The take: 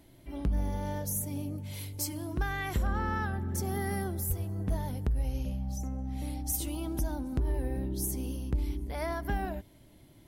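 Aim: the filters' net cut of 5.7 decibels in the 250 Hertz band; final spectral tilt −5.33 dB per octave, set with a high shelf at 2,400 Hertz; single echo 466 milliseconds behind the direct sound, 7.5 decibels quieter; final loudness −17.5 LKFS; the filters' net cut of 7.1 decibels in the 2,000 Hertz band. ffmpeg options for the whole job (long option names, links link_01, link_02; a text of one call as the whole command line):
ffmpeg -i in.wav -af "equalizer=frequency=250:width_type=o:gain=-7.5,equalizer=frequency=2000:width_type=o:gain=-6,highshelf=frequency=2400:gain=-6.5,aecho=1:1:466:0.422,volume=19dB" out.wav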